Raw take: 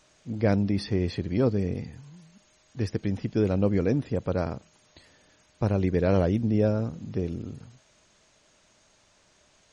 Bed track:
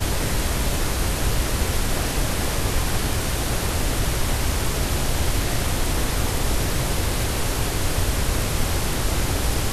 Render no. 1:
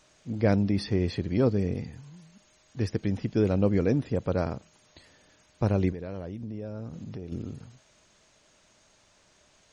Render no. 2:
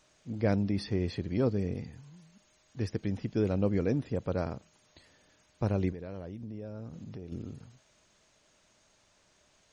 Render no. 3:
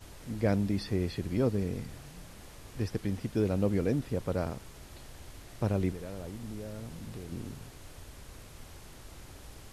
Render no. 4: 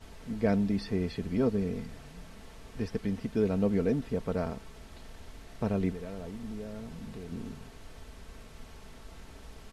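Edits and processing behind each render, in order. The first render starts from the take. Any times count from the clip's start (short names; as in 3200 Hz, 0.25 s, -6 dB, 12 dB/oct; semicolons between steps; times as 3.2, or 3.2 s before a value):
5.92–7.32 compressor 5:1, threshold -35 dBFS
gain -4.5 dB
add bed track -26.5 dB
high shelf 7100 Hz -12 dB; comb 4.5 ms, depth 49%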